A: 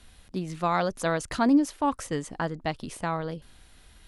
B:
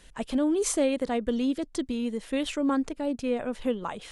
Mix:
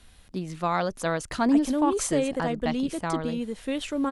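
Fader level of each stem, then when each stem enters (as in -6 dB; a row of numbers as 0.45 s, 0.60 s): -0.5 dB, -1.0 dB; 0.00 s, 1.35 s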